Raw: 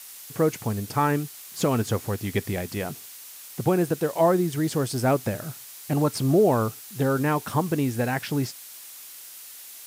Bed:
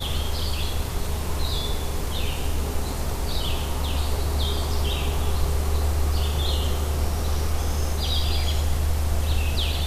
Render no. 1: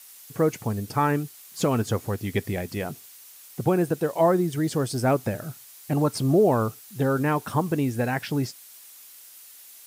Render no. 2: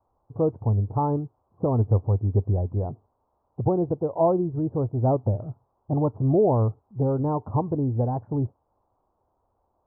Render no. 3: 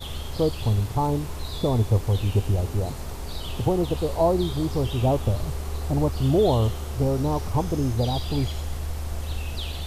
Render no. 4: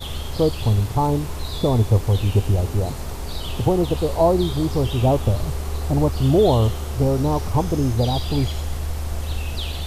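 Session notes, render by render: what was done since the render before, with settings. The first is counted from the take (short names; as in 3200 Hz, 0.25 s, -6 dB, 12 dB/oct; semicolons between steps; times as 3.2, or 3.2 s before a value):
denoiser 6 dB, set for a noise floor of -43 dBFS
steep low-pass 1000 Hz 48 dB/oct; resonant low shelf 120 Hz +11 dB, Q 1.5
add bed -7 dB
gain +4 dB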